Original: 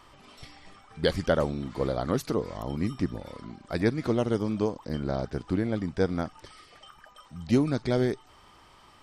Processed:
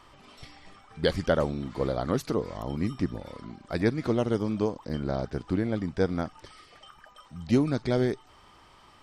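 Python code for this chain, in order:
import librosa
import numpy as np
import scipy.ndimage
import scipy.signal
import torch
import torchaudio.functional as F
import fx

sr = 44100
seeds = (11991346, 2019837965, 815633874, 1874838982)

y = fx.high_shelf(x, sr, hz=10000.0, db=-5.0)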